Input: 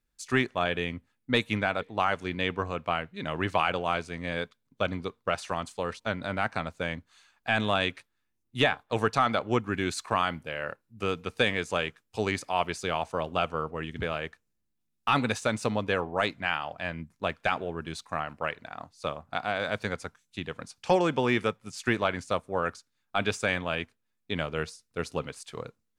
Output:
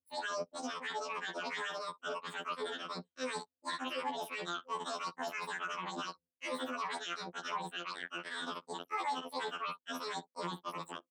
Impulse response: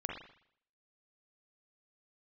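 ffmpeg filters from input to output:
-filter_complex "[0:a]afftfilt=real='re*pow(10,12/40*sin(2*PI*(0.93*log(max(b,1)*sr/1024/100)/log(2)-(-1.2)*(pts-256)/sr)))':imag='im*pow(10,12/40*sin(2*PI*(0.93*log(max(b,1)*sr/1024/100)/log(2)-(-1.2)*(pts-256)/sr)))':win_size=1024:overlap=0.75,asplit=2[a][b];[b]adelay=128.3,volume=-17dB,highshelf=f=4k:g=-2.89[c];[a][c]amix=inputs=2:normalize=0,anlmdn=2.51,areverse,acompressor=threshold=-41dB:ratio=4,areverse,equalizer=f=400:t=o:w=0.67:g=3,equalizer=f=2.5k:t=o:w=0.67:g=-5,equalizer=f=6.3k:t=o:w=0.67:g=-9,asetrate=103194,aresample=44100,highpass=f=140:w=0.5412,highpass=f=140:w=1.3066,highshelf=f=9.2k:g=-10,alimiter=level_in=12dB:limit=-24dB:level=0:latency=1:release=12,volume=-12dB,afftfilt=real='re*2*eq(mod(b,4),0)':imag='im*2*eq(mod(b,4),0)':win_size=2048:overlap=0.75,volume=10dB"

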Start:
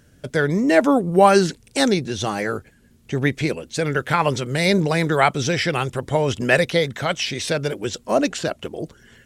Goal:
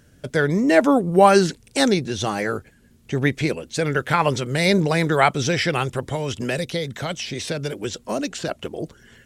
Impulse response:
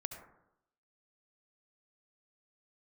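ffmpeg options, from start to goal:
-filter_complex "[0:a]asettb=1/sr,asplit=3[a][b][c];[a]atrim=end=6.084[d];[b]atrim=start=6.08:end=8.49,asetpts=PTS-STARTPTS,afade=t=in:d=0.004:c=qsin,afade=t=out:st=2.406:d=0.004:c=qsin,acrossover=split=390|1100|3100[e][f][g][h];[e]acompressor=threshold=-26dB:ratio=4[i];[f]acompressor=threshold=-31dB:ratio=4[j];[g]acompressor=threshold=-37dB:ratio=4[k];[h]acompressor=threshold=-31dB:ratio=4[l];[i][j][k][l]amix=inputs=4:normalize=0[m];[c]atrim=start=8.486[n];[d][m]acrossfade=d=0.004:c1=hsin:c2=qsin[o];[o][n]acrossfade=d=0.004:c1=qsin:c2=hsin"

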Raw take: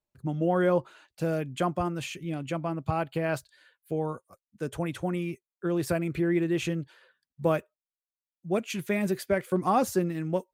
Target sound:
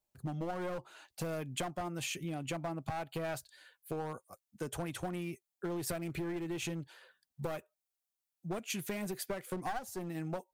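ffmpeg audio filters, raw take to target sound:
-af "asetnsamples=n=441:p=0,asendcmd='9.69 equalizer g 13.5',equalizer=f=760:t=o:w=0.41:g=7,aeval=exprs='clip(val(0),-1,0.0531)':c=same,acompressor=threshold=-34dB:ratio=8,highshelf=f=4.7k:g=9,volume=-1.5dB"

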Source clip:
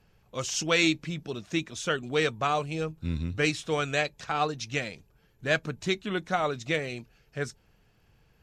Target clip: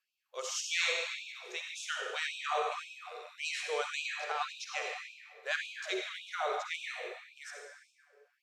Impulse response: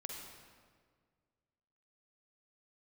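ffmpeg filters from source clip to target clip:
-filter_complex "[0:a]agate=range=-7dB:threshold=-50dB:ratio=16:detection=peak[a];[1:a]atrim=start_sample=2205,asetrate=39249,aresample=44100[b];[a][b]afir=irnorm=-1:irlink=0,afftfilt=real='re*gte(b*sr/1024,350*pow(2400/350,0.5+0.5*sin(2*PI*1.8*pts/sr)))':imag='im*gte(b*sr/1024,350*pow(2400/350,0.5+0.5*sin(2*PI*1.8*pts/sr)))':win_size=1024:overlap=0.75,volume=-2.5dB"

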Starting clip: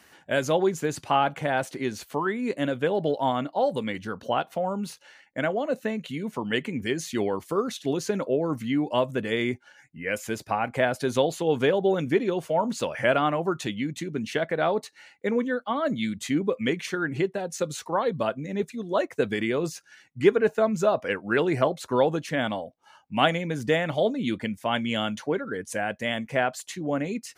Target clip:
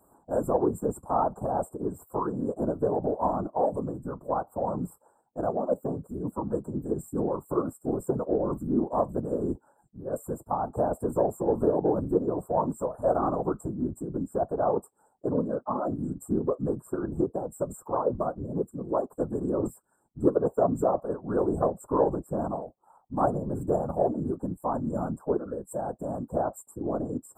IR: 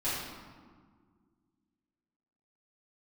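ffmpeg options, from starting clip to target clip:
-af "asuperstop=centerf=3000:order=12:qfactor=0.5,acontrast=37,afftfilt=real='hypot(re,im)*cos(2*PI*random(0))':imag='hypot(re,im)*sin(2*PI*random(1))':win_size=512:overlap=0.75,areverse,acompressor=mode=upward:threshold=-45dB:ratio=2.5,areverse,afftfilt=real='re*eq(mod(floor(b*sr/1024/1800),2),0)':imag='im*eq(mod(floor(b*sr/1024/1800),2),0)':win_size=1024:overlap=0.75,volume=-1dB"

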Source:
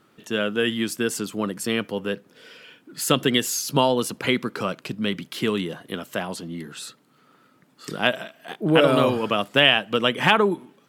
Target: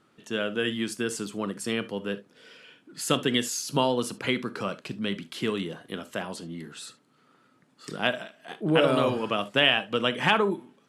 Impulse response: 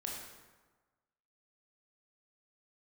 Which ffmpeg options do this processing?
-filter_complex "[0:a]lowpass=f=11k:w=0.5412,lowpass=f=11k:w=1.3066,asplit=2[a][b];[1:a]atrim=start_sample=2205,atrim=end_sample=3528[c];[b][c]afir=irnorm=-1:irlink=0,volume=-6.5dB[d];[a][d]amix=inputs=2:normalize=0,volume=-7dB"

